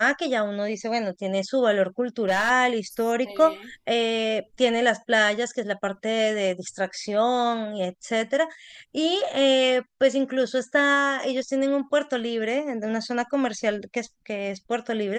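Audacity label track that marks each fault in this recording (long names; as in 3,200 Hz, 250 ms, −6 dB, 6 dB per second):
2.210000	2.510000	clipping −17 dBFS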